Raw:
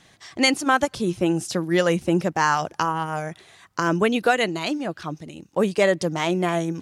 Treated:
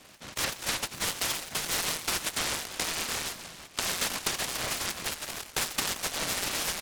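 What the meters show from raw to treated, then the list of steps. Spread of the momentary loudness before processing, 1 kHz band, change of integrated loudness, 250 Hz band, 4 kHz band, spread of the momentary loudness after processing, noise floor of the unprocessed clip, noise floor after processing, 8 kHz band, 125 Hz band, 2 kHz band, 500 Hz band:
11 LU, -13.0 dB, -7.5 dB, -20.5 dB, 0.0 dB, 5 LU, -55 dBFS, -51 dBFS, +5.5 dB, -16.0 dB, -7.5 dB, -18.0 dB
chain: comb 2.3 ms, depth 90%; compression 5:1, threshold -30 dBFS, peak gain reduction 16.5 dB; two-band feedback delay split 870 Hz, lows 88 ms, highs 320 ms, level -11 dB; frequency inversion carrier 3.7 kHz; delay time shaken by noise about 1.2 kHz, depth 0.19 ms

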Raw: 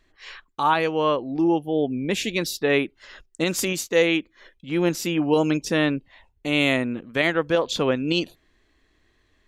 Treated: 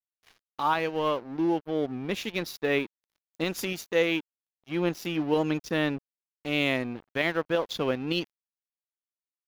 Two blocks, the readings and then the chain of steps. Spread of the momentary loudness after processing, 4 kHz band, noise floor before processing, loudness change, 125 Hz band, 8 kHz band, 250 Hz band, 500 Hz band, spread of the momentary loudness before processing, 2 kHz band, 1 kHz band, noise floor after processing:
7 LU, -6.0 dB, -65 dBFS, -6.0 dB, -5.5 dB, -12.0 dB, -6.0 dB, -5.5 dB, 7 LU, -5.5 dB, -5.5 dB, under -85 dBFS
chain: crossover distortion -36 dBFS; peaking EQ 8 kHz -12 dB 0.42 oct; trim -4.5 dB

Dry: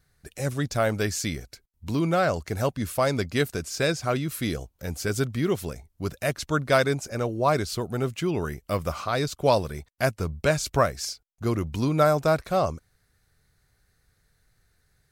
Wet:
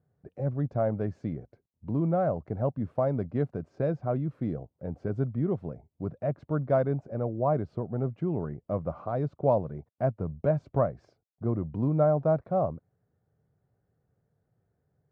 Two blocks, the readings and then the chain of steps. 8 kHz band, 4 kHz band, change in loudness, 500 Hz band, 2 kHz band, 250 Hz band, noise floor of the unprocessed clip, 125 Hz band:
under -40 dB, under -30 dB, -3.5 dB, -3.0 dB, -18.5 dB, -2.5 dB, -70 dBFS, -1.0 dB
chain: Chebyshev band-pass 120–660 Hz, order 2; dynamic bell 400 Hz, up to -5 dB, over -37 dBFS, Q 1.5

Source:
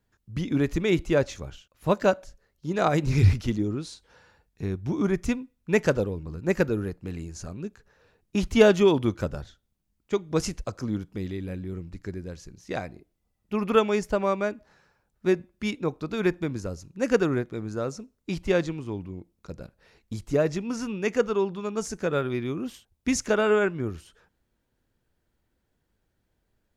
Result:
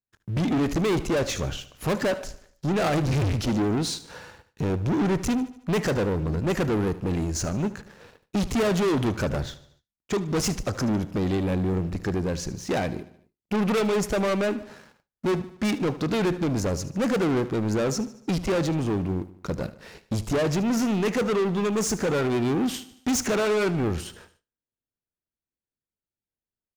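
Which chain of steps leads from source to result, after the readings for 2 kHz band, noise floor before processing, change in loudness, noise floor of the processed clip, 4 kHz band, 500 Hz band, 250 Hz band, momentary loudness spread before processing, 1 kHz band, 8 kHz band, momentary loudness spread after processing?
0.0 dB, -76 dBFS, +1.0 dB, under -85 dBFS, +4.5 dB, -0.5 dB, +3.0 dB, 16 LU, +1.5 dB, +6.5 dB, 8 LU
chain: in parallel at -1 dB: compression, threshold -29 dBFS, peak gain reduction 16.5 dB; on the sum: saturation -19 dBFS, distortion -9 dB; waveshaping leveller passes 3; bass shelf 320 Hz +5 dB; feedback delay 75 ms, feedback 51%, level -16.5 dB; gate with hold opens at -43 dBFS; bass shelf 100 Hz -10.5 dB; trim -2.5 dB

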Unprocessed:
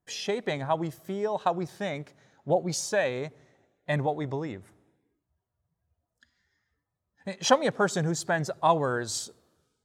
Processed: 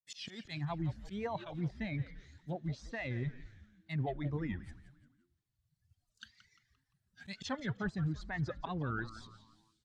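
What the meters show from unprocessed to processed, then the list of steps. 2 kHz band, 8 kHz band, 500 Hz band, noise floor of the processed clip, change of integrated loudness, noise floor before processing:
-10.0 dB, -23.0 dB, -17.0 dB, -85 dBFS, -11.0 dB, -84 dBFS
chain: fade-in on the opening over 1.21 s; de-hum 301.1 Hz, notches 20; reverb removal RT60 1.9 s; graphic EQ 125/250/500/1000/2000/4000/8000 Hz +10/+5/-10/-6/+7/+11/+6 dB; slow attack 168 ms; reverse; compression 6:1, threshold -35 dBFS, peak gain reduction 15 dB; reverse; wow and flutter 150 cents; modulation noise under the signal 27 dB; low-pass that closes with the level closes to 1.5 kHz, closed at -36 dBFS; on a send: frequency-shifting echo 173 ms, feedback 41%, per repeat -110 Hz, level -13.5 dB; on the sum: trim +2 dB

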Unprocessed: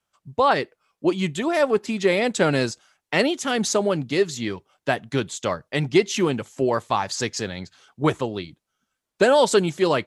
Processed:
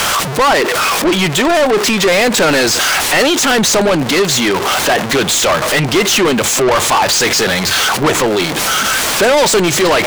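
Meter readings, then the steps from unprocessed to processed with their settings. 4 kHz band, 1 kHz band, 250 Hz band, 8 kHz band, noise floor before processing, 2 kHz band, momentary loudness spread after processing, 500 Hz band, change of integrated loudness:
+17.0 dB, +11.5 dB, +8.5 dB, +18.5 dB, -82 dBFS, +14.5 dB, 3 LU, +8.5 dB, +11.0 dB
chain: jump at every zero crossing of -27 dBFS; overdrive pedal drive 31 dB, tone 6.8 kHz, clips at -4.5 dBFS

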